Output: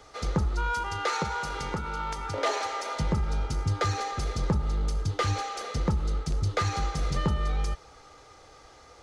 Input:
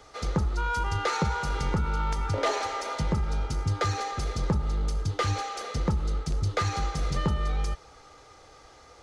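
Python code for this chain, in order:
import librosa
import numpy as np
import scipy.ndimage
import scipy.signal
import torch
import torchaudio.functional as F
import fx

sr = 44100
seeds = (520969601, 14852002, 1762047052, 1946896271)

y = fx.low_shelf(x, sr, hz=200.0, db=-10.5, at=(0.74, 2.96))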